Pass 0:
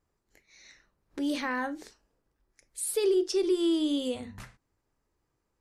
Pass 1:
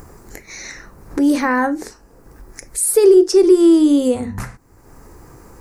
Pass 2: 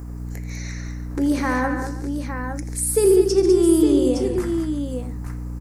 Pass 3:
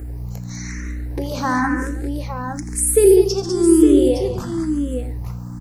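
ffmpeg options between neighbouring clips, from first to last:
ffmpeg -i in.wav -filter_complex "[0:a]equalizer=frequency=3300:width=1.4:gain=-15,bandreject=frequency=610:width=12,asplit=2[link_01][link_02];[link_02]acompressor=mode=upward:threshold=-31dB:ratio=2.5,volume=2.5dB[link_03];[link_01][link_03]amix=inputs=2:normalize=0,volume=8.5dB" out.wav
ffmpeg -i in.wav -filter_complex "[0:a]aeval=exprs='val(0)+0.0501*(sin(2*PI*60*n/s)+sin(2*PI*2*60*n/s)/2+sin(2*PI*3*60*n/s)/3+sin(2*PI*4*60*n/s)/4+sin(2*PI*5*60*n/s)/5)':channel_layout=same,asplit=2[link_01][link_02];[link_02]aecho=0:1:83|140|199|339|863:0.251|0.251|0.422|0.106|0.422[link_03];[link_01][link_03]amix=inputs=2:normalize=0,volume=-6dB" out.wav
ffmpeg -i in.wav -filter_complex "[0:a]asplit=2[link_01][link_02];[link_02]afreqshift=1[link_03];[link_01][link_03]amix=inputs=2:normalize=1,volume=5dB" out.wav

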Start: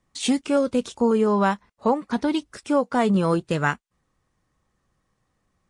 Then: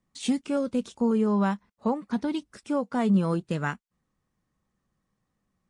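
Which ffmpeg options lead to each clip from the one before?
ffmpeg -i in.wav -af "equalizer=frequency=200:width_type=o:width=0.84:gain=7.5,volume=-8dB" out.wav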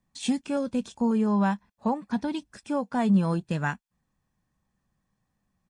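ffmpeg -i in.wav -af "aecho=1:1:1.2:0.36" out.wav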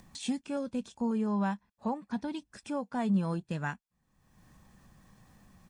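ffmpeg -i in.wav -af "acompressor=mode=upward:threshold=-32dB:ratio=2.5,volume=-6.5dB" out.wav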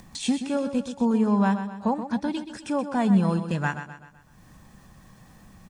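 ffmpeg -i in.wav -af "aecho=1:1:127|254|381|508|635:0.316|0.145|0.0669|0.0308|0.0142,volume=8dB" out.wav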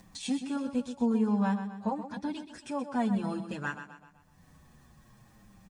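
ffmpeg -i in.wav -filter_complex "[0:a]asplit=2[link_01][link_02];[link_02]adelay=7.2,afreqshift=-0.52[link_03];[link_01][link_03]amix=inputs=2:normalize=1,volume=-4dB" out.wav

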